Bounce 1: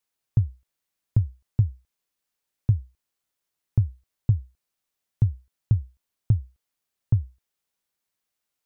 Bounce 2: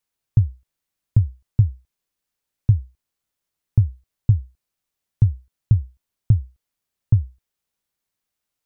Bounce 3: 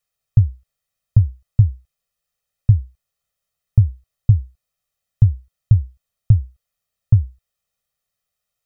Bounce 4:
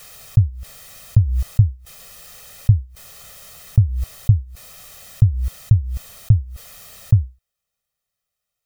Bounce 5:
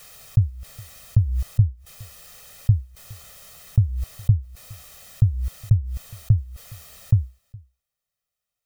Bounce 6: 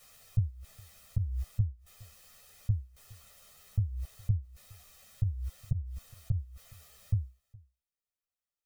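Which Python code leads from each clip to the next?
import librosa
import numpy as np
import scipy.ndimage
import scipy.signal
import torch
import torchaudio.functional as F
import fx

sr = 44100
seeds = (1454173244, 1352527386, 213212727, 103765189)

y1 = fx.low_shelf(x, sr, hz=190.0, db=6.5)
y2 = y1 + 0.94 * np.pad(y1, (int(1.6 * sr / 1000.0), 0))[:len(y1)]
y2 = y2 * librosa.db_to_amplitude(-1.0)
y3 = fx.pre_swell(y2, sr, db_per_s=40.0)
y3 = y3 * librosa.db_to_amplitude(-1.0)
y4 = y3 + 10.0 ** (-24.0 / 20.0) * np.pad(y3, (int(415 * sr / 1000.0), 0))[:len(y3)]
y4 = y4 * librosa.db_to_amplitude(-4.0)
y5 = fx.ensemble(y4, sr)
y5 = y5 * librosa.db_to_amplitude(-8.5)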